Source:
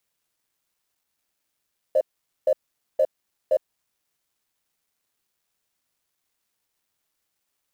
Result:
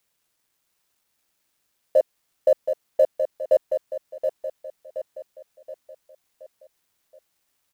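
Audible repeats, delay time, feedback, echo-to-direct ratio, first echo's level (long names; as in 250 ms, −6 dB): 5, 724 ms, 46%, −6.0 dB, −7.0 dB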